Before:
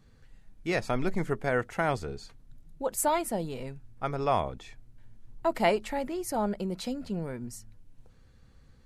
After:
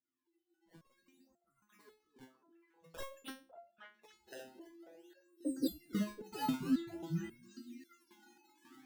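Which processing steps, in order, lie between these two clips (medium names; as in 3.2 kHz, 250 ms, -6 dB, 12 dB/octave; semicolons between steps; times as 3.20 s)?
resonances exaggerated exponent 3; frequency shift -360 Hz; band-pass sweep 6.2 kHz -> 260 Hz, 3.85–5.71 s; decimation with a swept rate 22×, swing 160% 0.51 Hz; repeats whose band climbs or falls 275 ms, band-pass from 260 Hz, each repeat 1.4 oct, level -3.5 dB; resonator arpeggio 3.7 Hz 130–690 Hz; trim +12 dB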